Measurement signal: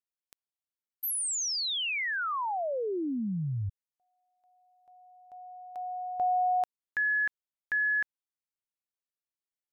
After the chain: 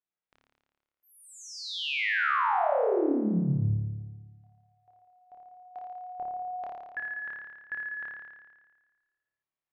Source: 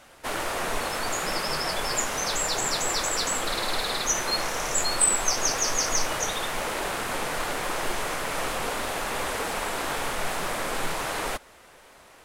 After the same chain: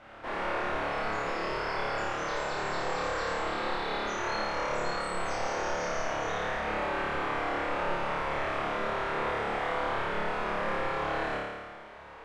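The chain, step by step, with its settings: hard clip -20.5 dBFS; limiter -27.5 dBFS; LPF 2200 Hz 12 dB/oct; notches 50/100/150/200/250 Hz; flutter echo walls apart 4.8 m, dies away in 1.4 s

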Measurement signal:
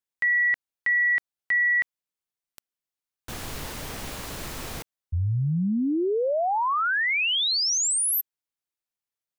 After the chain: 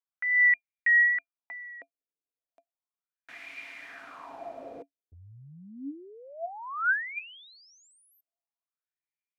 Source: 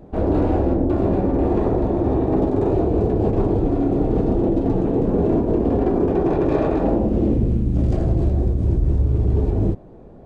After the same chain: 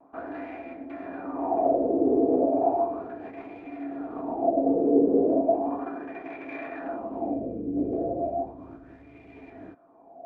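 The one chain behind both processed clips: wah 0.35 Hz 440–2200 Hz, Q 5.5; vibrato 0.89 Hz 39 cents; small resonant body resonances 280/680/2400 Hz, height 16 dB, ringing for 0.1 s; gain +2.5 dB

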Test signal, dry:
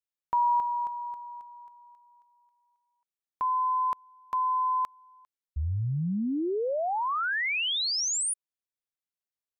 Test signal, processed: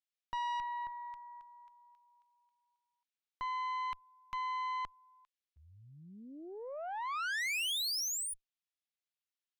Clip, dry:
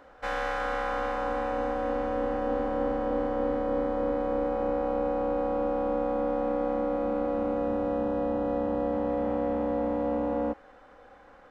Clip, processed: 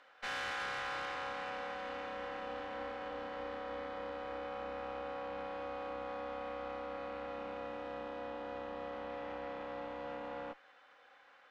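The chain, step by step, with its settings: band-pass 3100 Hz, Q 1.1; tube stage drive 39 dB, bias 0.65; gain +5 dB

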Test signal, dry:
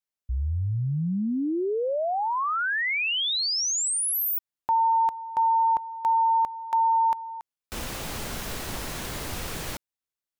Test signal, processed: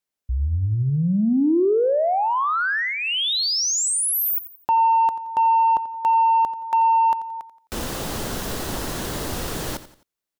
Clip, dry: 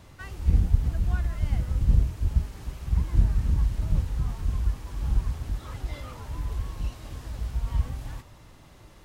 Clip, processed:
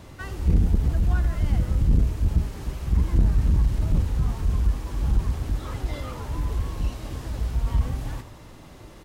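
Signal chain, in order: dynamic EQ 2300 Hz, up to -6 dB, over -52 dBFS, Q 3.7; soft clip -17 dBFS; bell 340 Hz +4.5 dB 1.9 oct; feedback echo 87 ms, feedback 37%, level -14.5 dB; gain +4.5 dB

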